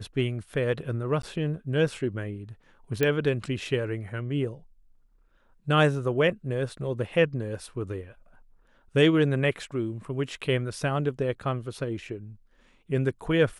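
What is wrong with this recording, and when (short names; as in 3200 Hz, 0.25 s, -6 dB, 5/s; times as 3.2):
1.22–1.23 gap 13 ms
3.03 pop -11 dBFS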